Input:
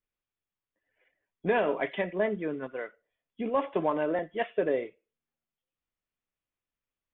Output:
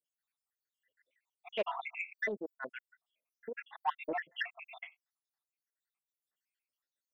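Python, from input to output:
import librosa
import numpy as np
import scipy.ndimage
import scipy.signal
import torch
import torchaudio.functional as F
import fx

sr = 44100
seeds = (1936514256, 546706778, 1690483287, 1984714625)

y = fx.spec_dropout(x, sr, seeds[0], share_pct=83)
y = fx.highpass(y, sr, hz=1500.0, slope=6)
y = 10.0 ** (-29.5 / 20.0) * np.tanh(y / 10.0 ** (-29.5 / 20.0))
y = fx.doppler_dist(y, sr, depth_ms=0.17)
y = y * 10.0 ** (7.5 / 20.0)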